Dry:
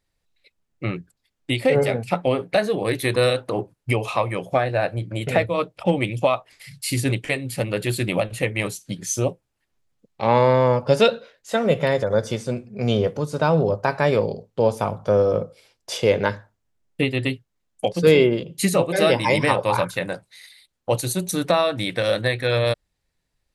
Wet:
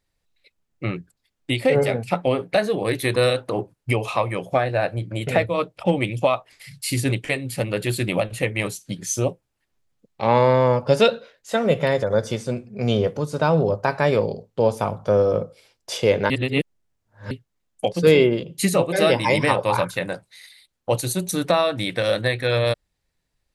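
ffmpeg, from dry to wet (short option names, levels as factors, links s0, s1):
-filter_complex "[0:a]asplit=3[s0][s1][s2];[s0]atrim=end=16.302[s3];[s1]atrim=start=16.298:end=17.312,asetpts=PTS-STARTPTS,areverse[s4];[s2]atrim=start=17.308[s5];[s3][s4]acrossfade=d=0.004:c1=hsin:c2=hsin[s6];[s6][s5]acrossfade=d=0.004:c1=hsin:c2=hsin"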